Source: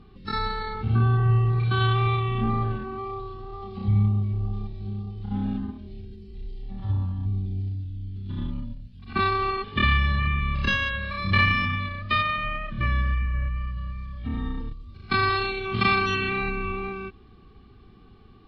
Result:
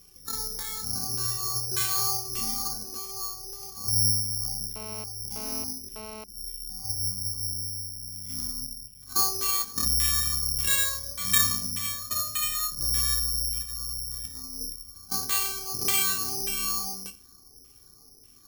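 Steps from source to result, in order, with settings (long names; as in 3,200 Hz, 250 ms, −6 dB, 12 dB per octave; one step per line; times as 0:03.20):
mains-hum notches 50/100/150/200 Hz
0:13.62–0:14.69: compressor whose output falls as the input rises −32 dBFS, ratio −0.5
auto-filter low-pass saw down 1.7 Hz 410–3,800 Hz
flanger 0.56 Hz, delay 2 ms, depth 2.1 ms, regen −47%
0:08.11–0:08.53: log-companded quantiser 6 bits
convolution reverb RT60 0.30 s, pre-delay 3 ms, DRR 5.5 dB
bad sample-rate conversion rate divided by 8×, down none, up zero stuff
0:04.76–0:06.24: phone interference −33 dBFS
level −9 dB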